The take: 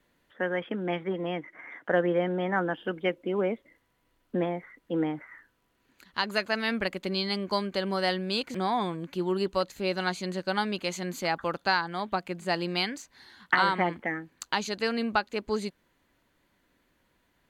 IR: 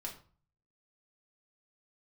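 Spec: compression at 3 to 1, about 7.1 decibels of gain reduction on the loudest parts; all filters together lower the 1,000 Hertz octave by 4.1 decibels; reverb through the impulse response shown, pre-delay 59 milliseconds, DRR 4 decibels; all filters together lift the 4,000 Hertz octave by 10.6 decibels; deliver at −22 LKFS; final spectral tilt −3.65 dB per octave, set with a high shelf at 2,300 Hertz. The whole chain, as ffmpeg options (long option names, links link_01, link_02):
-filter_complex "[0:a]equalizer=frequency=1000:width_type=o:gain=-7,highshelf=frequency=2300:gain=5,equalizer=frequency=4000:width_type=o:gain=8.5,acompressor=threshold=-26dB:ratio=3,asplit=2[link_01][link_02];[1:a]atrim=start_sample=2205,adelay=59[link_03];[link_02][link_03]afir=irnorm=-1:irlink=0,volume=-2.5dB[link_04];[link_01][link_04]amix=inputs=2:normalize=0,volume=7dB"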